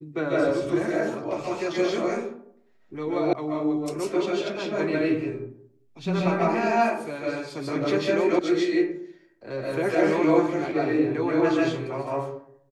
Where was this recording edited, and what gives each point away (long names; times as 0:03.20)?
0:03.33: cut off before it has died away
0:08.39: cut off before it has died away